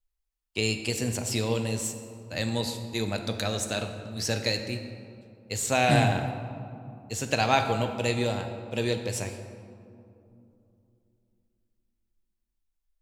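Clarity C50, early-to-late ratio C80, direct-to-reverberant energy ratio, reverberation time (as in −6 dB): 7.5 dB, 8.5 dB, 6.0 dB, 2.8 s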